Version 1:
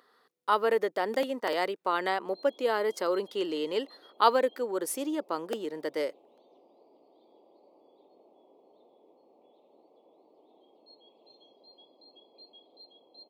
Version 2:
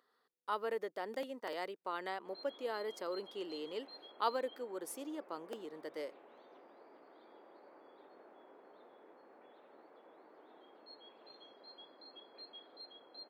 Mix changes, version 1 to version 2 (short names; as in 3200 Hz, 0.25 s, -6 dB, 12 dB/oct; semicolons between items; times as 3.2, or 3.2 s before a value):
speech -12.0 dB; background: remove Butterworth band-stop 1600 Hz, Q 0.71